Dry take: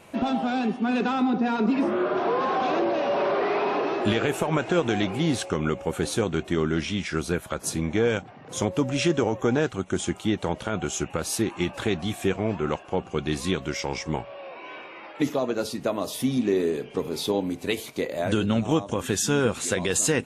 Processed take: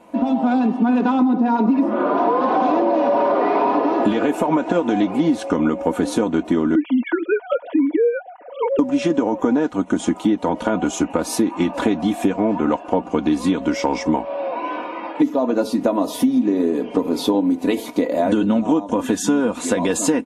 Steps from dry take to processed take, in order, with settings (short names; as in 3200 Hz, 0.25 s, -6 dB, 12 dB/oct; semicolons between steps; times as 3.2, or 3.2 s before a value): 6.75–8.79 sine-wave speech; comb 4.1 ms, depth 73%; AGC gain up to 15 dB; small resonant body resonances 320/610/880 Hz, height 17 dB, ringing for 25 ms; compressor 6:1, threshold -6 dBFS, peak gain reduction 14 dB; gain -8.5 dB